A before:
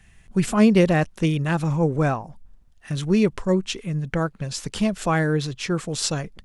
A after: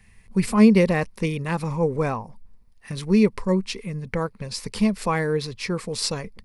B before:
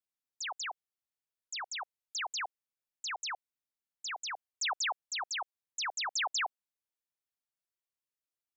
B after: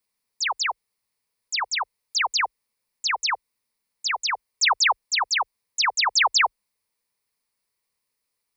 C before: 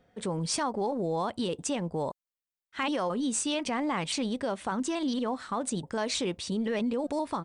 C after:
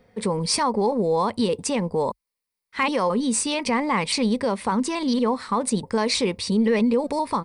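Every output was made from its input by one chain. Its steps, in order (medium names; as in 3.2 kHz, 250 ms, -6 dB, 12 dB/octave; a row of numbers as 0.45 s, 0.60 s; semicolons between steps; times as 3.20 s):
rippled EQ curve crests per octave 0.9, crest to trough 8 dB; normalise loudness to -23 LUFS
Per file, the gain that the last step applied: -2.0 dB, +13.0 dB, +7.0 dB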